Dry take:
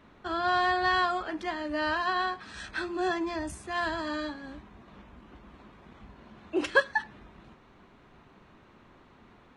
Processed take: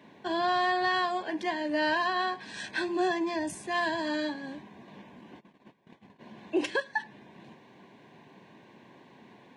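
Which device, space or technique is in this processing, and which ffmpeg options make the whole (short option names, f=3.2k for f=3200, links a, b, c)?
PA system with an anti-feedback notch: -filter_complex "[0:a]highpass=f=130:w=0.5412,highpass=f=130:w=1.3066,asuperstop=centerf=1300:order=4:qfactor=3.2,alimiter=limit=-22dB:level=0:latency=1:release=488,asplit=3[a][b][c];[a]afade=t=out:st=5.39:d=0.02[d];[b]agate=range=-19dB:threshold=-51dB:ratio=16:detection=peak,afade=t=in:st=5.39:d=0.02,afade=t=out:st=6.19:d=0.02[e];[c]afade=t=in:st=6.19:d=0.02[f];[d][e][f]amix=inputs=3:normalize=0,volume=3.5dB"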